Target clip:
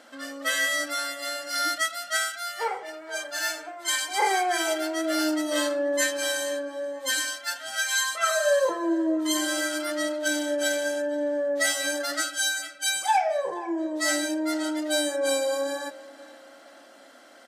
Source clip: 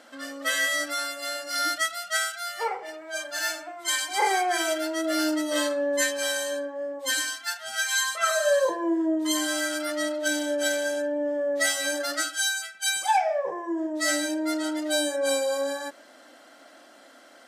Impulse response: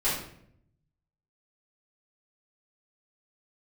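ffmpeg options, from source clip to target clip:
-filter_complex "[0:a]asplit=2[s0][s1];[s1]adelay=477,lowpass=f=3600:p=1,volume=0.112,asplit=2[s2][s3];[s3]adelay=477,lowpass=f=3600:p=1,volume=0.46,asplit=2[s4][s5];[s5]adelay=477,lowpass=f=3600:p=1,volume=0.46,asplit=2[s6][s7];[s7]adelay=477,lowpass=f=3600:p=1,volume=0.46[s8];[s0][s2][s4][s6][s8]amix=inputs=5:normalize=0"

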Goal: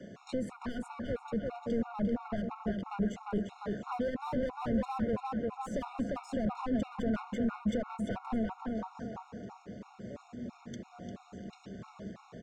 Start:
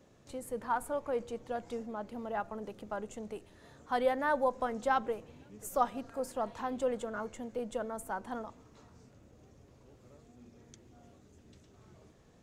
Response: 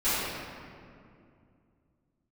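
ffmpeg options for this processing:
-filter_complex "[0:a]lowpass=f=7800:w=0.5412,lowpass=f=7800:w=1.3066,equalizer=f=200:w=2.8:g=13,asplit=2[s0][s1];[s1]adelay=349,lowpass=f=4000:p=1,volume=0.447,asplit=2[s2][s3];[s3]adelay=349,lowpass=f=4000:p=1,volume=0.38,asplit=2[s4][s5];[s5]adelay=349,lowpass=f=4000:p=1,volume=0.38,asplit=2[s6][s7];[s7]adelay=349,lowpass=f=4000:p=1,volume=0.38[s8];[s0][s2][s4][s6][s8]amix=inputs=5:normalize=0,asplit=2[s9][s10];[s10]highpass=f=720:p=1,volume=28.2,asoftclip=type=tanh:threshold=0.168[s11];[s9][s11]amix=inputs=2:normalize=0,lowpass=f=1900:p=1,volume=0.501,acrossover=split=380[s12][s13];[s13]acompressor=threshold=0.0224:ratio=3[s14];[s12][s14]amix=inputs=2:normalize=0,tremolo=f=140:d=0.261,acrossover=split=170|3600[s15][s16][s17];[s15]acontrast=69[s18];[s18][s16][s17]amix=inputs=3:normalize=0,afftfilt=real='re*gt(sin(2*PI*3*pts/sr)*(1-2*mod(floor(b*sr/1024/720),2)),0)':imag='im*gt(sin(2*PI*3*pts/sr)*(1-2*mod(floor(b*sr/1024/720),2)),0)':win_size=1024:overlap=0.75,volume=0.631"

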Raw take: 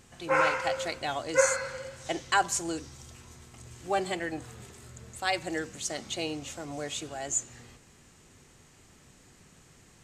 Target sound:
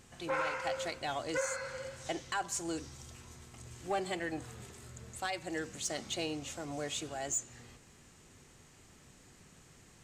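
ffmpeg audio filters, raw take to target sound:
-af "alimiter=limit=0.1:level=0:latency=1:release=455,asoftclip=type=tanh:threshold=0.075,volume=0.794"

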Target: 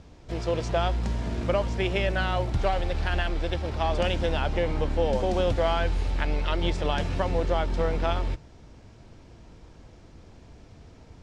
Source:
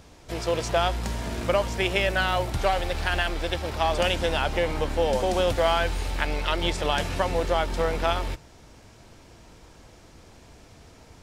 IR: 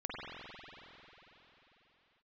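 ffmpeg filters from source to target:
-af "lowpass=6400,lowshelf=f=450:g=8.5,volume=0.531"

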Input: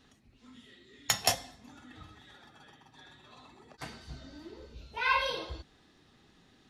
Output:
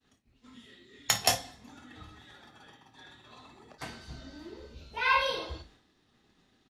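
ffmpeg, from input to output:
-filter_complex "[0:a]bandreject=f=50:t=h:w=6,bandreject=f=100:t=h:w=6,bandreject=f=150:t=h:w=6,agate=range=0.0224:threshold=0.00158:ratio=3:detection=peak,asplit=2[s0][s1];[s1]aecho=0:1:26|54:0.282|0.188[s2];[s0][s2]amix=inputs=2:normalize=0,volume=1.19"

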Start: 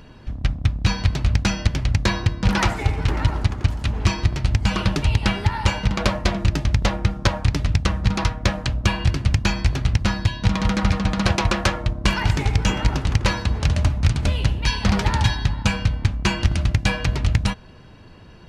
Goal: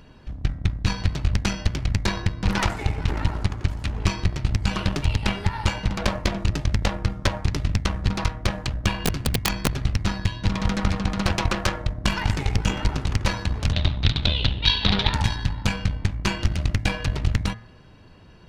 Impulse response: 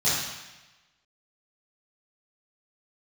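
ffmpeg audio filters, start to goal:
-filter_complex "[0:a]bandreject=f=112.8:t=h:w=4,bandreject=f=225.6:t=h:w=4,bandreject=f=338.4:t=h:w=4,bandreject=f=451.2:t=h:w=4,bandreject=f=564:t=h:w=4,bandreject=f=676.8:t=h:w=4,bandreject=f=789.6:t=h:w=4,bandreject=f=902.4:t=h:w=4,bandreject=f=1015.2:t=h:w=4,bandreject=f=1128:t=h:w=4,bandreject=f=1240.8:t=h:w=4,bandreject=f=1353.6:t=h:w=4,bandreject=f=1466.4:t=h:w=4,bandreject=f=1579.2:t=h:w=4,bandreject=f=1692:t=h:w=4,bandreject=f=1804.8:t=h:w=4,bandreject=f=1917.6:t=h:w=4,bandreject=f=2030.4:t=h:w=4,bandreject=f=2143.2:t=h:w=4,bandreject=f=2256:t=h:w=4,aeval=exprs='(tanh(3.98*val(0)+0.8)-tanh(0.8))/3.98':c=same,asettb=1/sr,asplit=3[s0][s1][s2];[s0]atrim=end=9.054[s3];[s1]atrim=start=9.05:end=9.83,asetpts=PTS-STARTPTS,afade=t=in:d=0.004:c=qsin,afade=t=out:st=0.776:d=0.004:c=qsin,aeval=exprs='(mod(4.73*val(0)+1,2)-1)/4.73':c=same[s4];[s2]atrim=start=9.826[s5];[s3][s4]acrossfade=d=0.004:c1=hsin:c2=qsin[s6];[s6][s5]acrossfade=d=0.004:c1=qsin:c2=hsin,asettb=1/sr,asplit=3[s7][s8][s9];[s7]atrim=end=13.734[s10];[s8]atrim=start=13.73:end=15.14,asetpts=PTS-STARTPTS,afade=t=in:d=0.004:c=qsin,afade=t=out:st=1.406:d=0.004:c=qsin,lowpass=f=3700:t=q:w=7.9[s11];[s9]atrim=start=15.136[s12];[s10][s11]acrossfade=d=0.004:c1=hsin:c2=qsin[s13];[s13][s12]acrossfade=d=0.004:c1=qsin:c2=hsin,volume=1.12"

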